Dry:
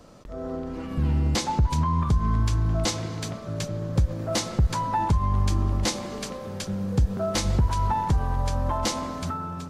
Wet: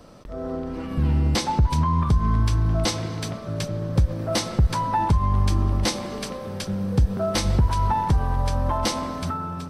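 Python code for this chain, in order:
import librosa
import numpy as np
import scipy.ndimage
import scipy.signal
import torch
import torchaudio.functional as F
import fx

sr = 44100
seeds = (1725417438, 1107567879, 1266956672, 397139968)

y = fx.notch(x, sr, hz=6900.0, q=5.6)
y = y * librosa.db_to_amplitude(2.5)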